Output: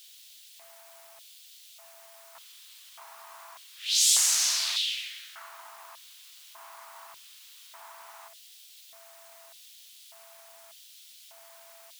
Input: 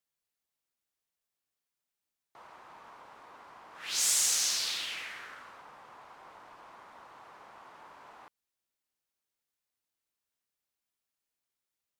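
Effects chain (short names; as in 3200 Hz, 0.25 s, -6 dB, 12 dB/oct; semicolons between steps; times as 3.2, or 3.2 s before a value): bell 520 Hz -15 dB 1.8 oct; whine 670 Hz -58 dBFS; pre-echo 32 ms -12 dB; in parallel at -5.5 dB: requantised 8-bit, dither triangular; on the sum: LFO high-pass square 0.84 Hz 880–3400 Hz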